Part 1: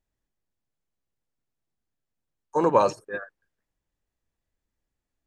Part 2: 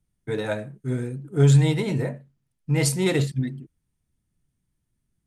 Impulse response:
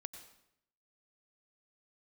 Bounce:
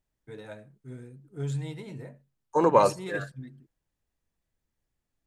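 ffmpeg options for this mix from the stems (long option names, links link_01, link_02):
-filter_complex "[0:a]volume=-0.5dB,asplit=2[link_01][link_02];[link_02]volume=-22dB[link_03];[1:a]volume=-16dB[link_04];[2:a]atrim=start_sample=2205[link_05];[link_03][link_05]afir=irnorm=-1:irlink=0[link_06];[link_01][link_04][link_06]amix=inputs=3:normalize=0"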